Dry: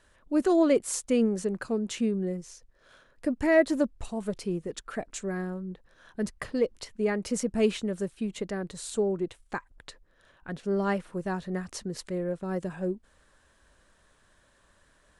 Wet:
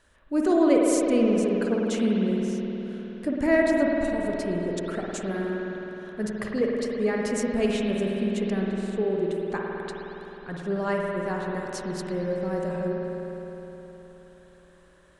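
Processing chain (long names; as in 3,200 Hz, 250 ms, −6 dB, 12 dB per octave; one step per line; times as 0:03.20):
0:08.59–0:09.05: low-pass filter 1,900 Hz → 1,000 Hz 6 dB per octave
spring reverb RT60 3.9 s, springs 52 ms, chirp 65 ms, DRR −2 dB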